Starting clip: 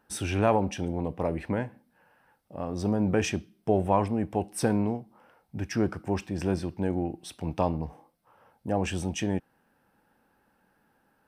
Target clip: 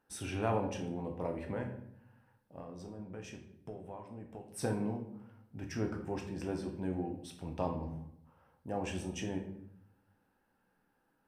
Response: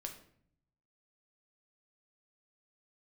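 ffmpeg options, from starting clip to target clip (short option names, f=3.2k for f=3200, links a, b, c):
-filter_complex "[0:a]asettb=1/sr,asplit=3[a][b][c];[a]atrim=end=2.584[d];[b]atrim=start=2.58:end=4.46,asetpts=PTS-STARTPTS,afade=t=in:d=0.004:c=qsin,afade=t=out:st=1.876:d=0.004:c=qsin,acompressor=threshold=-35dB:ratio=6[e];[c]atrim=start=4.456[f];[d][e]acrossfade=d=0.004:c1=hsin:c2=qsin[g];[g][f]acrossfade=d=0.004:c1=qsin:c2=hsin[h];[1:a]atrim=start_sample=2205,asetrate=37044,aresample=44100[i];[h][i]afir=irnorm=-1:irlink=0,volume=-6.5dB"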